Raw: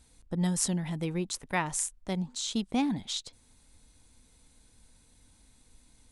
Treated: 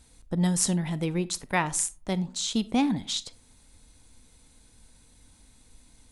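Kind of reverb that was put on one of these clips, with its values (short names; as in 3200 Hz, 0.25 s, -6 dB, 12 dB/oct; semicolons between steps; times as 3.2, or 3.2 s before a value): digital reverb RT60 0.45 s, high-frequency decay 0.4×, pre-delay 0 ms, DRR 16.5 dB; gain +4 dB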